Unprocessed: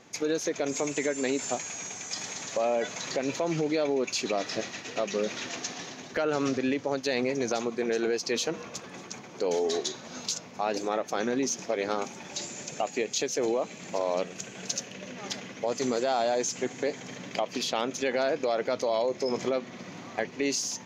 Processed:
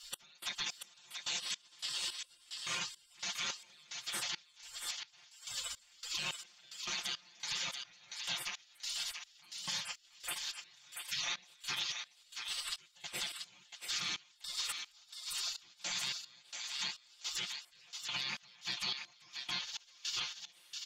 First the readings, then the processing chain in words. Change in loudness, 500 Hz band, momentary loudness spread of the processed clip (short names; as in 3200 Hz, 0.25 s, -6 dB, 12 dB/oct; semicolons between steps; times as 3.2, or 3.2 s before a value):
-9.5 dB, -33.5 dB, 10 LU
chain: notches 50/100/150/200 Hz; spectral gate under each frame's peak -25 dB weak; bell 3800 Hz +11.5 dB 1.3 oct; notch 4000 Hz, Q 15; comb 5.7 ms, depth 94%; compressor 6:1, threshold -49 dBFS, peak gain reduction 19.5 dB; limiter -42.5 dBFS, peak gain reduction 8.5 dB; step gate "x..xx....x" 107 bpm -24 dB; on a send: thinning echo 0.684 s, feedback 26%, high-pass 990 Hz, level -5 dB; on the sum: gain +15 dB